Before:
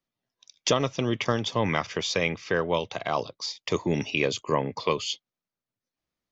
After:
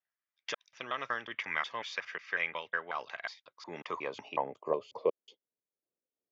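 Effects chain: slices played last to first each 182 ms, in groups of 2; band-pass sweep 1.7 kHz -> 440 Hz, 3.41–5.19 s

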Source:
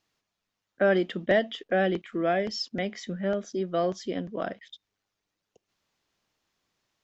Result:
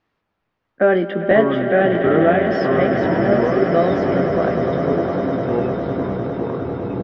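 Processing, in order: low-pass 2 kHz 12 dB/octave; doubling 18 ms -7 dB; on a send: echo with a slow build-up 101 ms, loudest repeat 8, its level -12 dB; on the sum: ever faster or slower copies 212 ms, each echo -6 st, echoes 3, each echo -6 dB; trim +8 dB

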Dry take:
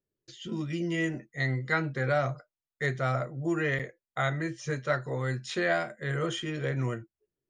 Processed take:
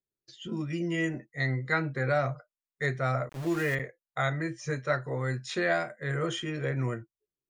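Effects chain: spectral noise reduction 9 dB; 3.29–3.75 s: small samples zeroed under -37 dBFS

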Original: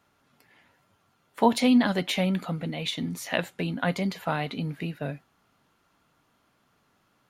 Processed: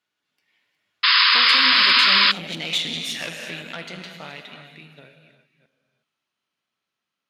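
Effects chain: chunks repeated in reverse 298 ms, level -11 dB; Doppler pass-by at 2.73 s, 17 m/s, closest 4.9 m; gated-style reverb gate 390 ms flat, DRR 4.5 dB; in parallel at +1 dB: compression, threshold -33 dBFS, peak gain reduction 8 dB; on the sum: valve stage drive 25 dB, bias 0.65; frequency weighting D; painted sound noise, 1.03–2.32 s, 960–5200 Hz -14 dBFS; trim -1.5 dB

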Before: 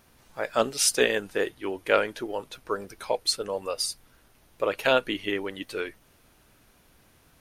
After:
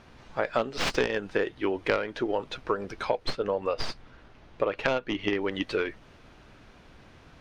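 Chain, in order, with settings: tracing distortion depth 0.27 ms; distance through air 150 m; compression 6:1, threshold -32 dBFS, peak gain reduction 15.5 dB; 3.25–5.36 s: treble shelf 6.3 kHz -9 dB; trim +8.5 dB

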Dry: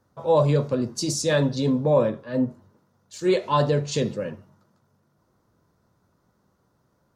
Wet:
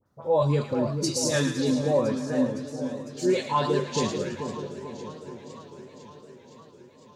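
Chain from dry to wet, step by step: phase dispersion highs, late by 62 ms, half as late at 1.7 kHz; in parallel at +0.5 dB: compression, threshold -27 dBFS, peak gain reduction 12.5 dB; on the sum: spectral noise reduction 6 dB; two-band feedback delay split 1 kHz, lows 437 ms, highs 111 ms, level -7.5 dB; modulated delay 507 ms, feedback 71%, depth 161 cents, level -15.5 dB; trim -5 dB

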